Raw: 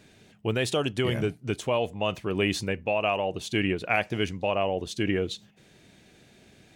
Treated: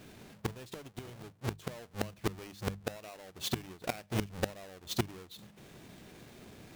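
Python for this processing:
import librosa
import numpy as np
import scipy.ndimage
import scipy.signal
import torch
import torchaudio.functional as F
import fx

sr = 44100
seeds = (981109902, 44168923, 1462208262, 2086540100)

y = fx.halfwave_hold(x, sr)
y = fx.gate_flip(y, sr, shuts_db=-19.0, range_db=-25)
y = fx.hum_notches(y, sr, base_hz=50, count=4)
y = F.gain(torch.from_numpy(y), -1.5).numpy()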